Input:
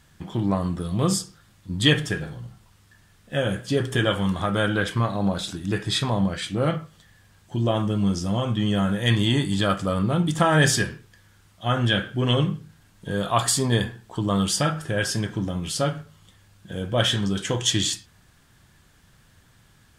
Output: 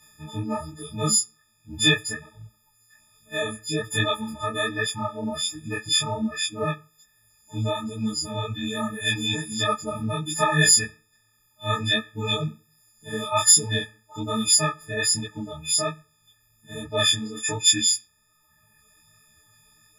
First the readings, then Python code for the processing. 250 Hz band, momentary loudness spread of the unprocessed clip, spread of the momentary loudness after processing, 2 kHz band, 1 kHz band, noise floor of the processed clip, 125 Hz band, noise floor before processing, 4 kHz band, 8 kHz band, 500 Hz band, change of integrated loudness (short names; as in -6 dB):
-6.5 dB, 10 LU, 16 LU, +0.5 dB, -1.5 dB, -65 dBFS, -7.5 dB, -57 dBFS, +2.5 dB, +8.5 dB, -4.0 dB, +0.5 dB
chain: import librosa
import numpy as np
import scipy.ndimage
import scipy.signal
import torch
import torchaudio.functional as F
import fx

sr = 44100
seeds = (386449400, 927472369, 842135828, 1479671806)

y = fx.freq_snap(x, sr, grid_st=6)
y = fx.dereverb_blind(y, sr, rt60_s=1.1)
y = fx.detune_double(y, sr, cents=43)
y = F.gain(torch.from_numpy(y), -1.5).numpy()